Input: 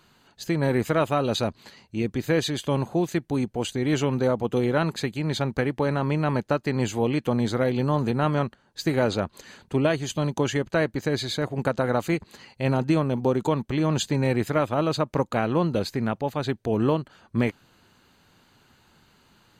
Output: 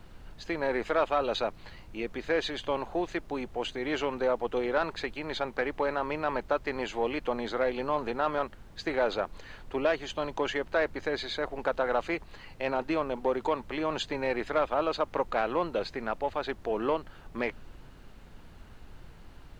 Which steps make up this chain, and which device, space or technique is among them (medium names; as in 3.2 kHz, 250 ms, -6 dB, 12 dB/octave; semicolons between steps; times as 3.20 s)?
aircraft cabin announcement (band-pass 490–3200 Hz; saturation -15.5 dBFS, distortion -20 dB; brown noise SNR 15 dB)